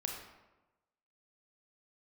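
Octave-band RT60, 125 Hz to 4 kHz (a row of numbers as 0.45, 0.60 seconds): 1.1, 1.1, 1.1, 1.1, 0.90, 0.65 seconds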